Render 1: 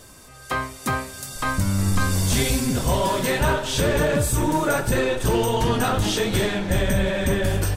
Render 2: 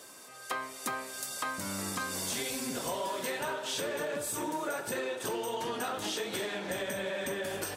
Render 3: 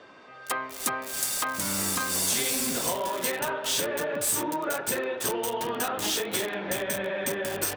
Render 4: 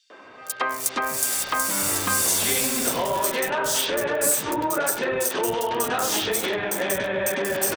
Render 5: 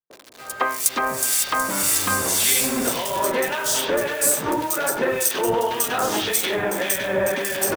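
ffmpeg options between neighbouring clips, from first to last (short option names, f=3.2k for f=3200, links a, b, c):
-af "highpass=330,acompressor=threshold=-29dB:ratio=6,volume=-3dB"
-filter_complex "[0:a]highshelf=f=4.7k:g=7,acrossover=split=480|3100[a][b][c];[c]acrusher=bits=5:mix=0:aa=0.000001[d];[a][b][d]amix=inputs=3:normalize=0,volume=4.5dB"
-filter_complex "[0:a]acrossover=split=190|4300[a][b][c];[b]adelay=100[d];[a]adelay=240[e];[e][d][c]amix=inputs=3:normalize=0,volume=5.5dB"
-filter_complex "[0:a]acrossover=split=750[a][b];[b]acrusher=bits=6:mix=0:aa=0.000001[c];[a][c]amix=inputs=2:normalize=0,acrossover=split=1800[d][e];[d]aeval=exprs='val(0)*(1-0.7/2+0.7/2*cos(2*PI*1.8*n/s))':c=same[f];[e]aeval=exprs='val(0)*(1-0.7/2-0.7/2*cos(2*PI*1.8*n/s))':c=same[g];[f][g]amix=inputs=2:normalize=0,volume=5.5dB"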